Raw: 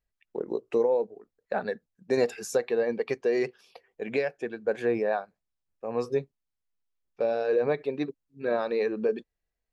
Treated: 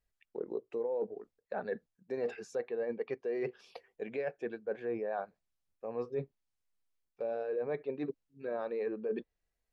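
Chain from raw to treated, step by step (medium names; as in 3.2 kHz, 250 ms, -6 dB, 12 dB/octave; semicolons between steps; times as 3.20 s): low-pass that closes with the level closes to 2.6 kHz, closed at -25.5 dBFS; reverse; compression 6:1, threshold -36 dBFS, peak gain reduction 15.5 dB; reverse; dynamic bell 480 Hz, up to +3 dB, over -49 dBFS, Q 1.2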